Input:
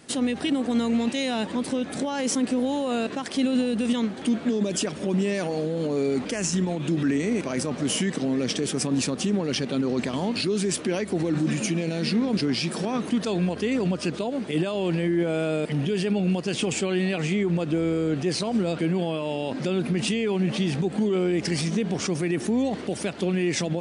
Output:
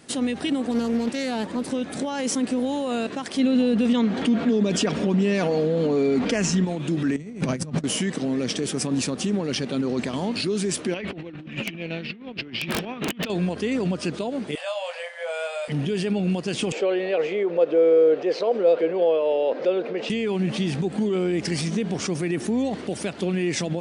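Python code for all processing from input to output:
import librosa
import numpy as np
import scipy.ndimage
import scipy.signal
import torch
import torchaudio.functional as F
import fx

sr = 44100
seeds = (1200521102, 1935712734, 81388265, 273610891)

y = fx.chain(x, sr, fx.peak_eq(hz=3100.0, db=-4.0, octaves=0.93),
    fx.doppler_dist(depth_ms=0.32), at=(0.71, 1.71))
y = fx.chain(y, sr, fx.air_absorb(metres=87.0),
    fx.comb(ms=4.3, depth=0.32),
    fx.env_flatten(amount_pct=50), at=(3.39, 6.65))
y = fx.chain(y, sr, fx.peak_eq(hz=150.0, db=15.0, octaves=0.9),
    fx.over_compress(threshold_db=-27.0, ratio=-0.5), at=(7.16, 7.84))
y = fx.chain(y, sr, fx.over_compress(threshold_db=-31.0, ratio=-0.5),
    fx.lowpass_res(hz=2800.0, q=2.9),
    fx.overflow_wrap(gain_db=17.0), at=(10.94, 13.3))
y = fx.chain(y, sr, fx.brickwall_highpass(low_hz=490.0),
    fx.doubler(ms=23.0, db=-5.0), at=(14.55, 15.68))
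y = fx.chain(y, sr, fx.highpass_res(hz=490.0, q=5.2),
    fx.air_absorb(metres=190.0), at=(16.72, 20.1))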